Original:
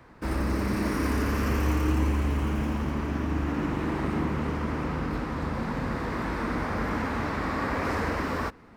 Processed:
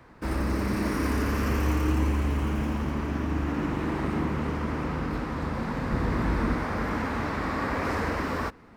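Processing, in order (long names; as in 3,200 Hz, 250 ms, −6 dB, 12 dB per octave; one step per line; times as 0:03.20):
0:05.92–0:06.54: low-shelf EQ 220 Hz +9 dB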